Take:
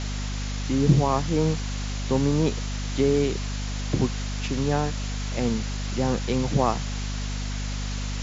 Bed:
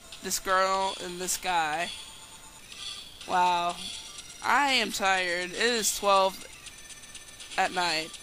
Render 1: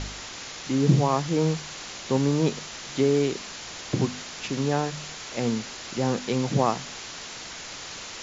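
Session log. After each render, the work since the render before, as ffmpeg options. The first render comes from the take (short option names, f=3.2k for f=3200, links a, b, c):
-af "bandreject=f=50:t=h:w=4,bandreject=f=100:t=h:w=4,bandreject=f=150:t=h:w=4,bandreject=f=200:t=h:w=4,bandreject=f=250:t=h:w=4"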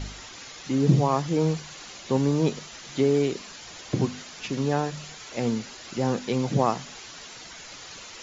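-af "afftdn=nr=8:nf=-39"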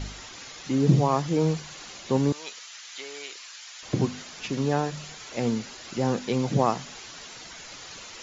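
-filter_complex "[0:a]asettb=1/sr,asplit=3[a][b][c];[a]atrim=end=2.324[d];[b]atrim=start=2.32:end=3.83,asetpts=PTS-STARTPTS,afade=t=in:d=0.004:c=qsin,afade=t=out:st=1.506:d=0.004:c=qsin,highpass=1.4k[e];[c]atrim=start=3.826[f];[d][e]acrossfade=d=0.004:c1=hsin:c2=qsin[g];[g][f]acrossfade=d=0.004:c1=qsin:c2=hsin"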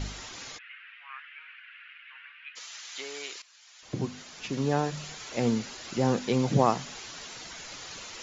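-filter_complex "[0:a]asplit=3[a][b][c];[a]afade=t=out:st=0.57:d=0.02[d];[b]asuperpass=centerf=2000:order=8:qfactor=1.4,afade=t=in:st=0.57:d=0.02,afade=t=out:st=2.55:d=0.02[e];[c]afade=t=in:st=2.55:d=0.02[f];[d][e][f]amix=inputs=3:normalize=0,asplit=2[g][h];[g]atrim=end=3.42,asetpts=PTS-STARTPTS,afade=t=out:st=3.416:d=0.004:c=hsin:silence=0.141254[i];[h]atrim=start=3.42,asetpts=PTS-STARTPTS,afade=t=in:d=1.66:silence=0.141254[j];[i][j]concat=n=2:v=0:a=1"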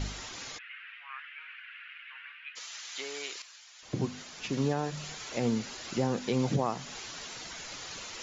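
-af "alimiter=limit=-18.5dB:level=0:latency=1:release=263,areverse,acompressor=mode=upward:threshold=-42dB:ratio=2.5,areverse"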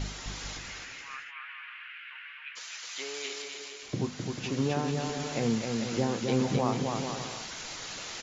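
-filter_complex "[0:a]asplit=2[a][b];[b]adelay=26,volume=-13.5dB[c];[a][c]amix=inputs=2:normalize=0,aecho=1:1:260|442|569.4|658.6|721:0.631|0.398|0.251|0.158|0.1"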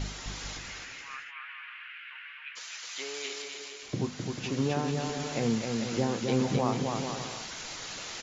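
-af anull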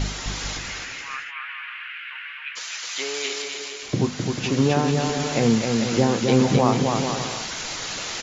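-af "volume=9.5dB"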